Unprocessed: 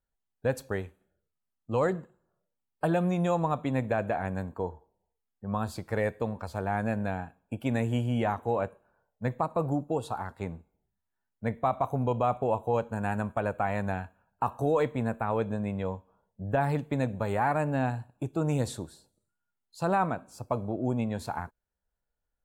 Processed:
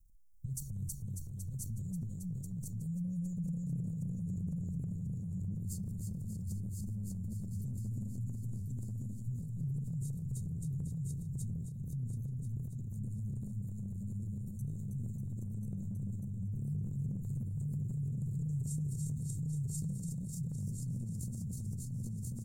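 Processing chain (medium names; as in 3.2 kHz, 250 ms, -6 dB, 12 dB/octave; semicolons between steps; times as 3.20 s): peak limiter -27 dBFS, peak gain reduction 11 dB; bass shelf 220 Hz +12 dB; hum notches 60/120 Hz; bouncing-ball echo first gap 320 ms, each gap 0.85×, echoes 5; touch-sensitive phaser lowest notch 290 Hz, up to 1.5 kHz, full sweep at -16 dBFS; peaking EQ 94 Hz -11 dB 1.1 oct; comb 1.6 ms, depth 84%; feedback delay 1039 ms, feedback 41%, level -3.5 dB; compression 6:1, threshold -42 dBFS, peak gain reduction 17 dB; Chebyshev band-stop 170–6500 Hz, order 3; transient shaper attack -1 dB, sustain +8 dB; trim +7.5 dB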